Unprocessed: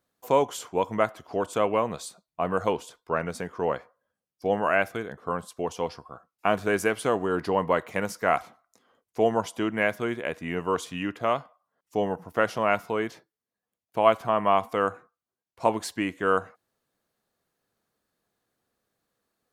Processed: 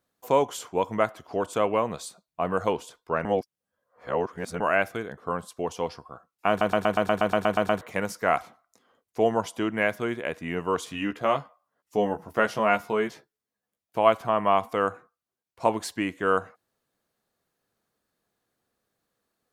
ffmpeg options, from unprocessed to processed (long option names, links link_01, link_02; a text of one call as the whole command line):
ffmpeg -i in.wav -filter_complex "[0:a]asettb=1/sr,asplit=3[link_01][link_02][link_03];[link_01]atrim=end=10.854[link_04];[link_02]atrim=start=10.85:end=13.98,asetpts=PTS-STARTPTS,afade=type=in:duration=0.004:curve=qsin,afade=type=out:start_time=3.126:duration=0.004:curve=qsin,asplit=2[link_05][link_06];[link_06]adelay=14,volume=-5dB[link_07];[link_05][link_07]amix=inputs=2:normalize=0,atrim=end_sample=138033[link_08];[link_03]atrim=start=13.976[link_09];[link_04][link_08]acrossfade=duration=0.004:curve1=hsin:curve2=qsin[link_10];[link_10][link_09]acrossfade=duration=0.004:curve1=qsin:curve2=hsin,asplit=14[link_11][link_12][link_13][link_14][link_15][link_16][link_17][link_18][link_19][link_20][link_21][link_22][link_23][link_24];[link_11]atrim=end=3.252[link_25];[link_12]atrim=start=3.248:end=4.602,asetpts=PTS-STARTPTS,areverse[link_26];[link_13]atrim=start=4.598:end=6.612[link_27];[link_14]atrim=start=6.488:end=6.612[link_28];[link_15]atrim=start=6.488:end=6.612[link_29];[link_16]atrim=start=6.488:end=6.612[link_30];[link_17]atrim=start=6.488:end=6.612[link_31];[link_18]atrim=start=6.488:end=6.612[link_32];[link_19]atrim=start=6.488:end=6.612[link_33];[link_20]atrim=start=6.488:end=6.612[link_34];[link_21]atrim=start=6.488:end=6.612[link_35];[link_22]atrim=start=6.488:end=6.612[link_36];[link_23]atrim=start=6.488:end=6.612[link_37];[link_24]atrim=start=7.808[link_38];[link_25][link_26]acrossfade=duration=0.004:curve1=hsin:curve2=hsin[link_39];[link_39][link_27]acrossfade=duration=0.004:curve1=hsin:curve2=hsin[link_40];[link_40][link_28]acrossfade=duration=0.004:curve1=hsin:curve2=hsin[link_41];[link_41][link_29]acrossfade=duration=0.004:curve1=hsin:curve2=hsin[link_42];[link_42][link_30]acrossfade=duration=0.004:curve1=hsin:curve2=hsin[link_43];[link_43][link_31]acrossfade=duration=0.004:curve1=hsin:curve2=hsin[link_44];[link_44][link_32]acrossfade=duration=0.004:curve1=hsin:curve2=hsin[link_45];[link_45][link_33]acrossfade=duration=0.004:curve1=hsin:curve2=hsin[link_46];[link_46][link_34]acrossfade=duration=0.004:curve1=hsin:curve2=hsin[link_47];[link_47][link_35]acrossfade=duration=0.004:curve1=hsin:curve2=hsin[link_48];[link_48][link_36]acrossfade=duration=0.004:curve1=hsin:curve2=hsin[link_49];[link_49][link_37]acrossfade=duration=0.004:curve1=hsin:curve2=hsin[link_50];[link_50][link_38]acrossfade=duration=0.004:curve1=hsin:curve2=hsin" out.wav